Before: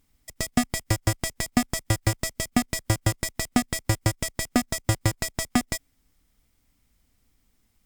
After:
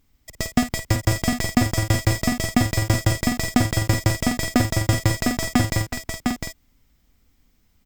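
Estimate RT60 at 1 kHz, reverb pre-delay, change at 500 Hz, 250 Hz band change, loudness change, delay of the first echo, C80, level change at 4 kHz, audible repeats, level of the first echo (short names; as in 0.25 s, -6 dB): none, none, +5.0 dB, +5.5 dB, +4.5 dB, 52 ms, none, +4.0 dB, 4, -8.5 dB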